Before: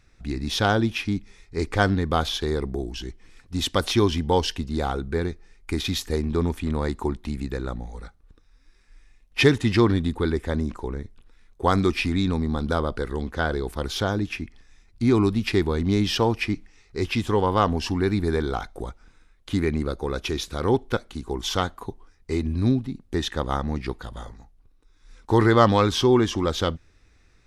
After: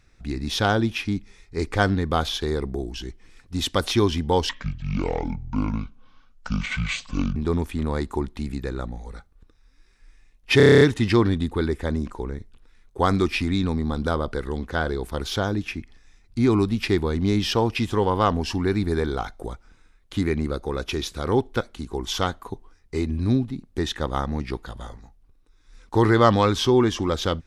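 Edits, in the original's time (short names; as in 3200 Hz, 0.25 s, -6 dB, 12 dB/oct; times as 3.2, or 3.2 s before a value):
4.49–6.24 speed 61%
9.45 stutter 0.03 s, 9 plays
16.39–17.11 cut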